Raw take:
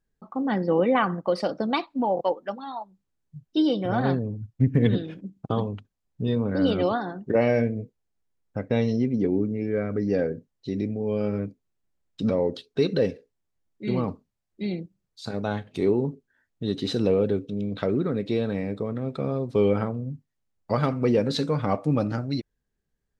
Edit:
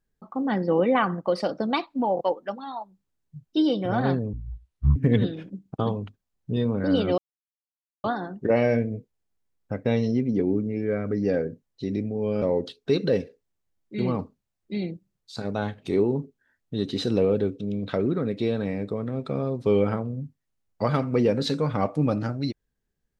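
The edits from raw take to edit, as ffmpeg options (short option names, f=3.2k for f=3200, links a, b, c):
-filter_complex "[0:a]asplit=5[a][b][c][d][e];[a]atrim=end=4.334[f];[b]atrim=start=4.33:end=4.67,asetpts=PTS-STARTPTS,asetrate=23814,aresample=44100[g];[c]atrim=start=4.666:end=6.89,asetpts=PTS-STARTPTS,afade=t=out:st=2.22:d=0.004:c=hsin,apad=pad_dur=0.86[h];[d]atrim=start=6.89:end=11.272,asetpts=PTS-STARTPTS,afade=t=in:d=0.004:c=hsin[i];[e]atrim=start=12.308[j];[f][g]acrossfade=d=0.004:c1=hsin:c2=hsin[k];[h][i]concat=n=2:v=0:a=1[l];[k][l]acrossfade=d=0.004:c1=hsin:c2=hsin[m];[m][j]acrossfade=d=0.004:c1=hsin:c2=hsin"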